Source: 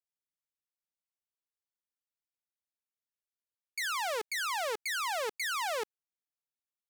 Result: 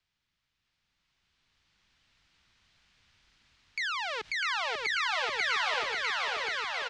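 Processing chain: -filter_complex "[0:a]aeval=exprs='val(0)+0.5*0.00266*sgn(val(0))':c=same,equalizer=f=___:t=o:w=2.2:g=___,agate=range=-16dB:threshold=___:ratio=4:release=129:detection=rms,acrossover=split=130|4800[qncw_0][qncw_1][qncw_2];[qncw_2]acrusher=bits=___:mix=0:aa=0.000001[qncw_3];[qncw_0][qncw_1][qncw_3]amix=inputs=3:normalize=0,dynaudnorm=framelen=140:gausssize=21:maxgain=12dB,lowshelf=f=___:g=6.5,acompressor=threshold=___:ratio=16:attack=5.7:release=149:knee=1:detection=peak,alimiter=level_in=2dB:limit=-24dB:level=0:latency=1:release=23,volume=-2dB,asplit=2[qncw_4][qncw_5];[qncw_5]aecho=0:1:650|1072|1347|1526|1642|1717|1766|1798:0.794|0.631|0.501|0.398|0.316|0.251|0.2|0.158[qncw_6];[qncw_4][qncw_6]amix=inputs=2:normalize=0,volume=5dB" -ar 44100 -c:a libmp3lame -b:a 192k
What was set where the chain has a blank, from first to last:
500, -13, -55dB, 4, 160, -33dB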